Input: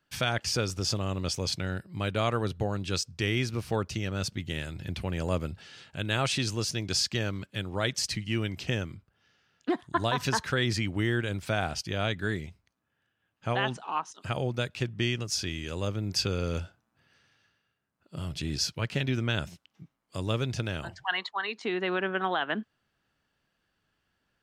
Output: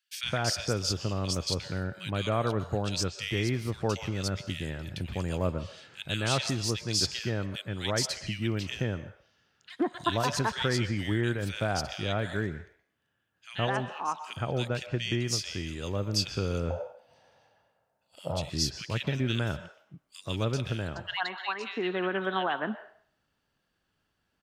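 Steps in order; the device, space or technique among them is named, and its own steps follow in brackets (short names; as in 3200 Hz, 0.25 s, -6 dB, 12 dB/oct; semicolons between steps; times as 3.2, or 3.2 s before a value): filtered reverb send (on a send at -11.5 dB: HPF 520 Hz 24 dB/oct + LPF 7100 Hz 12 dB/oct + reverb RT60 0.55 s, pre-delay 0.118 s); 16.58–18.38 on the sum: band shelf 680 Hz +15.5 dB 1.2 oct; bands offset in time highs, lows 0.12 s, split 2000 Hz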